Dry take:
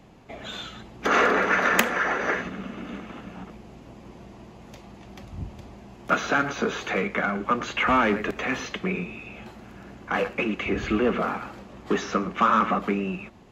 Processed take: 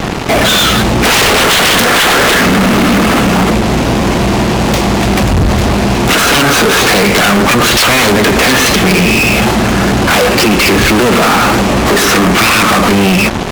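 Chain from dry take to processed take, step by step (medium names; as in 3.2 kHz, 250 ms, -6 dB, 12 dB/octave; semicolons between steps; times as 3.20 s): self-modulated delay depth 0.93 ms; compression, threshold -27 dBFS, peak gain reduction 12 dB; fuzz box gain 52 dB, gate -52 dBFS; trim +6 dB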